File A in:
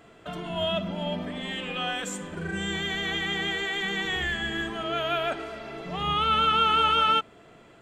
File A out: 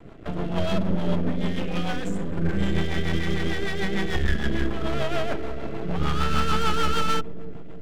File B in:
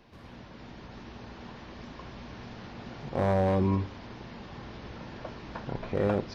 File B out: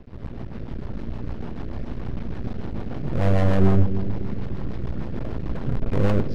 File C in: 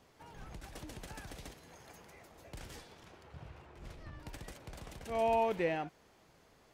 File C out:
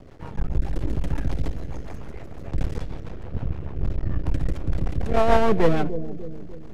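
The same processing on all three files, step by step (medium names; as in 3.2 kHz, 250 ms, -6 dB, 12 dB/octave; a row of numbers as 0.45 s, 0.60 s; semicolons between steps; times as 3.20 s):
tilt EQ -3.5 dB/octave; valve stage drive 19 dB, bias 0.55; half-wave rectifier; rotary cabinet horn 6.7 Hz; on a send: bucket-brigade echo 296 ms, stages 1024, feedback 51%, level -10 dB; on the sum: normalise loudness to -27 LUFS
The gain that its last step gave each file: +10.5 dB, +12.5 dB, +20.0 dB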